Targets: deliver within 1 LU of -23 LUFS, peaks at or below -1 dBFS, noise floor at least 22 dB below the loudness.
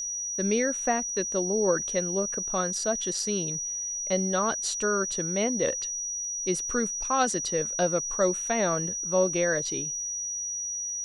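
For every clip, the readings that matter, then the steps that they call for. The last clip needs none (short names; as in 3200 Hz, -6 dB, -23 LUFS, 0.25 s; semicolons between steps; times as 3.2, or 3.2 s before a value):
ticks 25/s; steady tone 5800 Hz; tone level -30 dBFS; loudness -27.0 LUFS; peak -12.0 dBFS; loudness target -23.0 LUFS
-> de-click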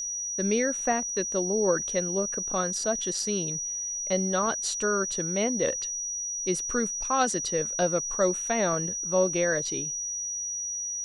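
ticks 0.091/s; steady tone 5800 Hz; tone level -30 dBFS
-> notch 5800 Hz, Q 30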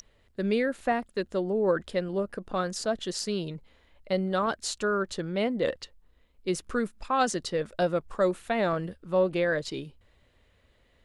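steady tone none; loudness -29.0 LUFS; peak -12.5 dBFS; loudness target -23.0 LUFS
-> gain +6 dB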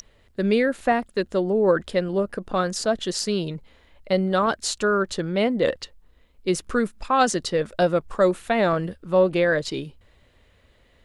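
loudness -23.0 LUFS; peak -6.5 dBFS; noise floor -59 dBFS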